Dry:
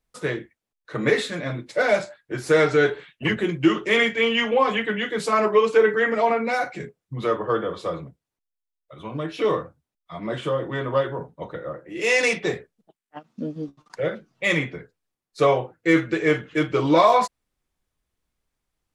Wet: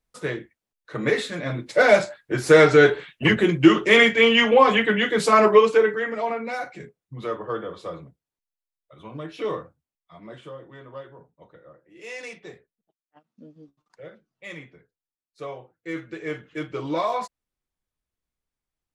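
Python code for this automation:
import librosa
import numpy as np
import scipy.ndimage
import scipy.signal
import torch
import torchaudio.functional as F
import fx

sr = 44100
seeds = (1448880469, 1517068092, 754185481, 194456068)

y = fx.gain(x, sr, db=fx.line((1.29, -2.0), (1.82, 4.5), (5.53, 4.5), (6.04, -6.0), (9.6, -6.0), (10.73, -17.0), (15.56, -17.0), (16.51, -9.0)))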